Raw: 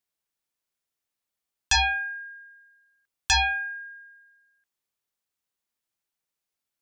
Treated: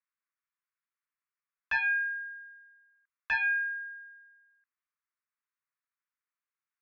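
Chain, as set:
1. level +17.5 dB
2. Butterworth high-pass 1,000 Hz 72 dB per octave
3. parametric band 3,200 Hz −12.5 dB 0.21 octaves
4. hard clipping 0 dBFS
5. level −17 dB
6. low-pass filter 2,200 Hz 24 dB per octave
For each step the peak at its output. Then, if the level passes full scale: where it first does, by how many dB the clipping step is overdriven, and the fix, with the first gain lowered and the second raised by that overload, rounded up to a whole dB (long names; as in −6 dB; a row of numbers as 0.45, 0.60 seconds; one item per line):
+2.5, +6.5, +6.5, 0.0, −17.0, −18.0 dBFS
step 1, 6.5 dB
step 1 +10.5 dB, step 5 −10 dB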